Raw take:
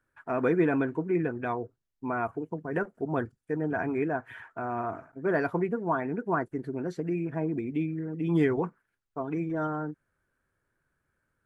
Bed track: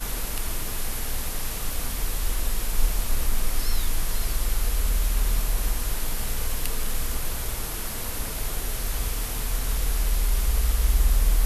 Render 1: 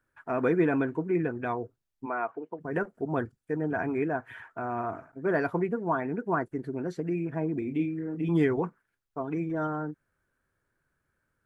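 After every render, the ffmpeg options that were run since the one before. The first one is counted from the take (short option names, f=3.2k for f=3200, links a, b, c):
-filter_complex "[0:a]asplit=3[a][b][c];[a]afade=t=out:st=2.05:d=0.02[d];[b]highpass=380,lowpass=3.5k,afade=t=in:st=2.05:d=0.02,afade=t=out:st=2.59:d=0.02[e];[c]afade=t=in:st=2.59:d=0.02[f];[d][e][f]amix=inputs=3:normalize=0,asettb=1/sr,asplit=3[g][h][i];[g]atrim=end=7.594[j];[h]atrim=start=7.59:end=8.29,asetpts=PTS-STARTPTS,afade=t=in:d=0.004:c=qsin,afade=t=out:st=0.696:d=0.004:c=qsin,asplit=2[k][l];[l]adelay=29,volume=-6.5dB[m];[k][m]amix=inputs=2:normalize=0,atrim=end_sample=30870[n];[i]atrim=start=8.286[o];[j][n]acrossfade=d=0.004:c1=hsin:c2=qsin[p];[p][o]acrossfade=d=0.004:c1=qsin:c2=hsin"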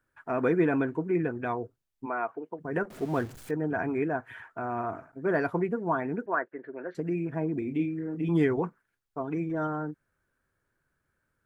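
-filter_complex "[0:a]asettb=1/sr,asplit=3[a][b][c];[a]atrim=end=2.904[d];[b]atrim=start=2.9:end=3.51,asetpts=PTS-STARTPTS,afade=t=in:d=0.004:c=qsin,afade=t=out:st=0.606:d=0.004:c=qsin,aeval=exprs='val(0)+0.5*0.00891*sgn(val(0))':c=same[e];[c]atrim=start=3.506[f];[d][e]acrossfade=d=0.004:c1=hsin:c2=qsin[g];[g][f]acrossfade=d=0.004:c1=qsin:c2=hsin,asettb=1/sr,asplit=3[h][i][j];[h]atrim=end=6.264[k];[i]atrim=start=6.26:end=6.95,asetpts=PTS-STARTPTS,afade=t=in:d=0.004:c=qsin,afade=t=out:st=0.686:d=0.004:c=qsin,highpass=480,equalizer=f=560:t=q:w=4:g=5,equalizer=f=810:t=q:w=4:g=-4,equalizer=f=1.7k:t=q:w=4:g=7,lowpass=f=2.6k:w=0.5412,lowpass=f=2.6k:w=1.3066[l];[j]atrim=start=6.946[m];[k][l]acrossfade=d=0.004:c1=hsin:c2=qsin[n];[n][m]acrossfade=d=0.004:c1=qsin:c2=hsin"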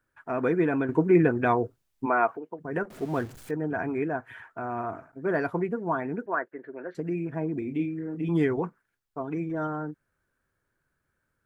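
-filter_complex "[0:a]asplit=3[a][b][c];[a]atrim=end=0.892[d];[b]atrim=start=0.888:end=2.372,asetpts=PTS-STARTPTS,volume=8dB[e];[c]atrim=start=2.368[f];[d][e]acrossfade=d=0.004:c1=hsin:c2=hsin[g];[g][f]acrossfade=d=0.004:c1=hsin:c2=hsin"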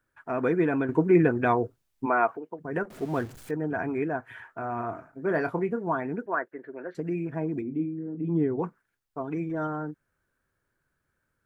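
-filter_complex "[0:a]asettb=1/sr,asplit=3[a][b][c];[a]atrim=end=4.284[d];[b]atrim=start=4.28:end=5.87,asetpts=PTS-STARTPTS,afade=t=in:d=0.004:c=qsin,afade=t=out:st=1.586:d=0.004:c=qsin,asplit=2[e][f];[f]adelay=26,volume=-11dB[g];[e][g]amix=inputs=2:normalize=0,atrim=end_sample=70119[h];[c]atrim=start=5.866[i];[d][h]acrossfade=d=0.004:c1=hsin:c2=qsin[j];[j][i]acrossfade=d=0.004:c1=qsin:c2=hsin,asplit=3[k][l][m];[k]afade=t=out:st=7.61:d=0.02[n];[l]bandpass=f=230:t=q:w=0.67,afade=t=in:st=7.61:d=0.02,afade=t=out:st=8.58:d=0.02[o];[m]afade=t=in:st=8.58:d=0.02[p];[n][o][p]amix=inputs=3:normalize=0"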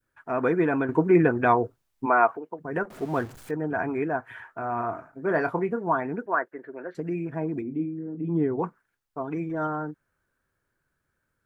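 -af "adynamicequalizer=threshold=0.0158:dfrequency=1000:dqfactor=0.84:tfrequency=1000:tqfactor=0.84:attack=5:release=100:ratio=0.375:range=2.5:mode=boostabove:tftype=bell"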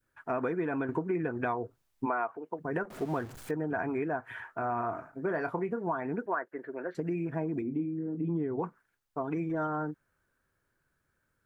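-af "acompressor=threshold=-28dB:ratio=10"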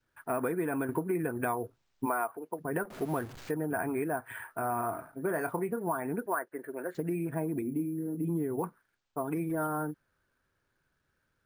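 -af "acrusher=samples=4:mix=1:aa=0.000001"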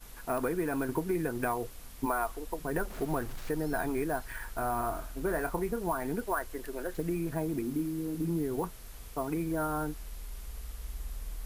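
-filter_complex "[1:a]volume=-19.5dB[a];[0:a][a]amix=inputs=2:normalize=0"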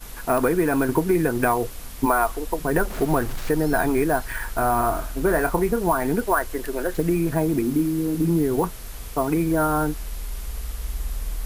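-af "volume=11dB"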